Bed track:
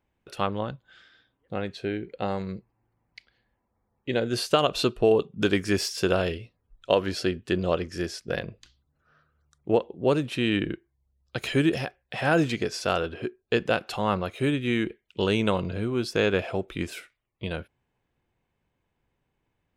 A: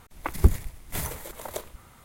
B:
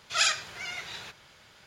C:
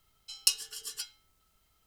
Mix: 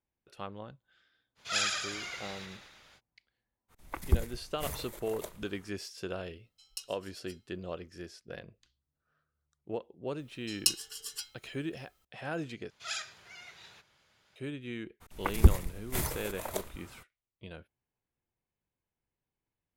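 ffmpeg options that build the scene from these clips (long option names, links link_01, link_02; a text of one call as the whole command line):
ffmpeg -i bed.wav -i cue0.wav -i cue1.wav -i cue2.wav -filter_complex "[2:a]asplit=2[link_01][link_02];[1:a]asplit=2[link_03][link_04];[3:a]asplit=2[link_05][link_06];[0:a]volume=-14.5dB[link_07];[link_01]asplit=9[link_08][link_09][link_10][link_11][link_12][link_13][link_14][link_15][link_16];[link_09]adelay=110,afreqshift=-31,volume=-4dB[link_17];[link_10]adelay=220,afreqshift=-62,volume=-8.6dB[link_18];[link_11]adelay=330,afreqshift=-93,volume=-13.2dB[link_19];[link_12]adelay=440,afreqshift=-124,volume=-17.7dB[link_20];[link_13]adelay=550,afreqshift=-155,volume=-22.3dB[link_21];[link_14]adelay=660,afreqshift=-186,volume=-26.9dB[link_22];[link_15]adelay=770,afreqshift=-217,volume=-31.5dB[link_23];[link_16]adelay=880,afreqshift=-248,volume=-36.1dB[link_24];[link_08][link_17][link_18][link_19][link_20][link_21][link_22][link_23][link_24]amix=inputs=9:normalize=0[link_25];[link_07]asplit=2[link_26][link_27];[link_26]atrim=end=12.704[link_28];[link_02]atrim=end=1.66,asetpts=PTS-STARTPTS,volume=-13dB[link_29];[link_27]atrim=start=14.356[link_30];[link_25]atrim=end=1.66,asetpts=PTS-STARTPTS,volume=-6.5dB,afade=type=in:duration=0.05,afade=type=out:start_time=1.61:duration=0.05,adelay=1350[link_31];[link_03]atrim=end=2.04,asetpts=PTS-STARTPTS,volume=-8dB,afade=type=in:duration=0.05,afade=type=out:start_time=1.99:duration=0.05,adelay=3680[link_32];[link_05]atrim=end=1.86,asetpts=PTS-STARTPTS,volume=-16.5dB,afade=type=in:duration=0.004:curve=hsin,afade=type=out:start_time=1.856:duration=0.004:curve=hsin,adelay=6300[link_33];[link_06]atrim=end=1.86,asetpts=PTS-STARTPTS,volume=-1.5dB,afade=type=in:duration=0.004:curve=hsin,afade=type=out:start_time=1.856:duration=0.004:curve=hsin,adelay=10190[link_34];[link_04]atrim=end=2.04,asetpts=PTS-STARTPTS,volume=-1.5dB,afade=type=in:duration=0.02,afade=type=out:start_time=2.02:duration=0.02,adelay=15000[link_35];[link_28][link_29]acrossfade=duration=0.004:curve1=hsin:curve2=hsin[link_36];[link_36][link_30]acrossfade=duration=0.004:curve1=hsin:curve2=hsin[link_37];[link_37][link_31][link_32][link_33][link_34][link_35]amix=inputs=6:normalize=0" out.wav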